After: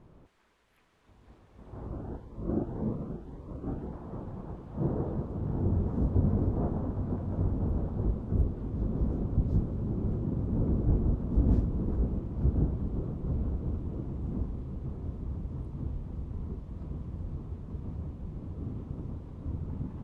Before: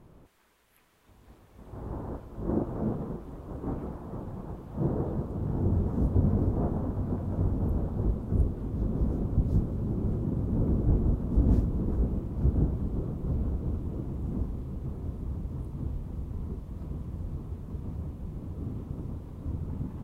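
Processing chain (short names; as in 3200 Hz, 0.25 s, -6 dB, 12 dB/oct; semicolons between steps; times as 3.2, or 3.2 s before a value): air absorption 65 m; 1.87–3.93 cascading phaser rising 1.8 Hz; gain -1.5 dB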